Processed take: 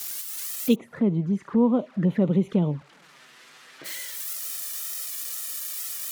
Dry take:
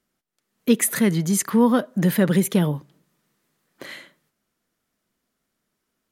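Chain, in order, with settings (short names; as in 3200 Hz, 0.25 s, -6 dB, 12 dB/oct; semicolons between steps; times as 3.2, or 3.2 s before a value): switching spikes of -20 dBFS; 0.74–3.84 LPF 1000 Hz -> 2600 Hz 12 dB/oct; envelope flanger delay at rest 9.6 ms, full sweep at -16.5 dBFS; gain -2.5 dB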